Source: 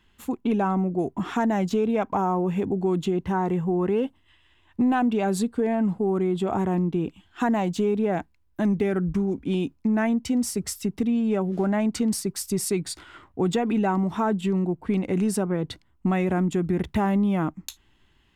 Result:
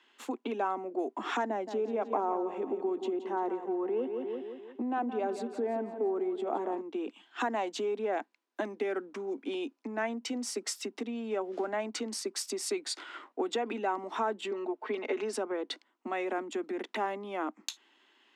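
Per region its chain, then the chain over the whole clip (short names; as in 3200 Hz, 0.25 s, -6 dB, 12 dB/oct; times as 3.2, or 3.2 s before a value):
1.49–6.81 tilt shelf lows +6.5 dB, about 1100 Hz + feedback echo 0.172 s, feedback 48%, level -10.5 dB
14.51–15.33 BPF 330–4800 Hz + comb 4.7 ms, depth 95%
whole clip: compressor, threshold -27 dBFS; steep high-pass 220 Hz 72 dB/oct; three-band isolator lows -19 dB, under 300 Hz, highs -18 dB, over 7700 Hz; gain +2 dB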